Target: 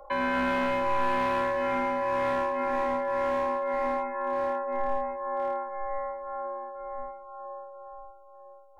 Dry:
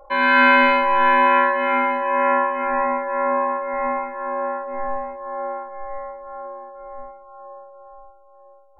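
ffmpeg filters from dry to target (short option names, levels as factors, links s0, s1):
-filter_complex "[0:a]lowshelf=f=410:g=-3,acrossover=split=140|760[s0][s1][s2];[s1]asoftclip=type=hard:threshold=0.0422[s3];[s2]acompressor=threshold=0.02:ratio=6[s4];[s0][s3][s4]amix=inputs=3:normalize=0"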